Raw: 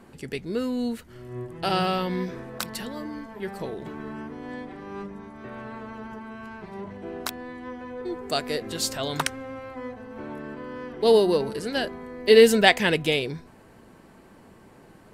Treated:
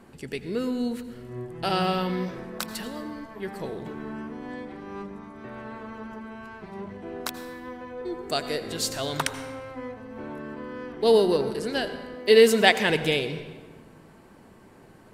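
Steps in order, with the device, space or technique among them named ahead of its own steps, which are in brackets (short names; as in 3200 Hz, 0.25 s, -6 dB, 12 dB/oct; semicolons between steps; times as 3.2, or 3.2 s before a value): saturated reverb return (on a send at -10.5 dB: reverb RT60 1.5 s, pre-delay 76 ms + soft clip -13.5 dBFS, distortion -13 dB); 12.16–12.9 on the sum: HPF 170 Hz 6 dB/oct; gain -1 dB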